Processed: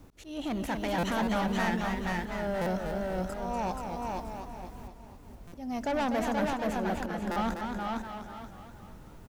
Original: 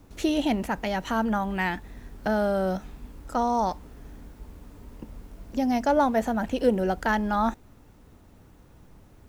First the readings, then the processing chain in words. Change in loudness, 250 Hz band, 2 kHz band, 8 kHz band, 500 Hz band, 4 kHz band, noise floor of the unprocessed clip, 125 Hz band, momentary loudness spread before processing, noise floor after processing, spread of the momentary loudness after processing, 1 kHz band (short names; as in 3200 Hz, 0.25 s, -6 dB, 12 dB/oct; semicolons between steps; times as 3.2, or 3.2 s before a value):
-6.0 dB, -5.0 dB, -3.5 dB, -1.5 dB, -6.0 dB, -2.5 dB, -54 dBFS, -1.5 dB, 21 LU, -50 dBFS, 19 LU, -5.0 dB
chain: auto swell 0.458 s; soft clip -27 dBFS, distortion -8 dB; on a send: feedback echo 0.478 s, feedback 26%, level -3 dB; on the sum: stuck buffer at 0.98/2.61/5.47/7.31, samples 256, times 8; warbling echo 0.245 s, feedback 48%, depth 140 cents, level -6.5 dB